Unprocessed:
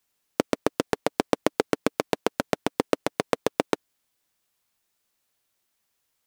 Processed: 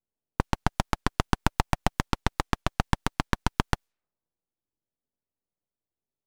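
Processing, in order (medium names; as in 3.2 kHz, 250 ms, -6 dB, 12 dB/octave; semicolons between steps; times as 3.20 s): level-controlled noise filter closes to 310 Hz, open at -27 dBFS; full-wave rectifier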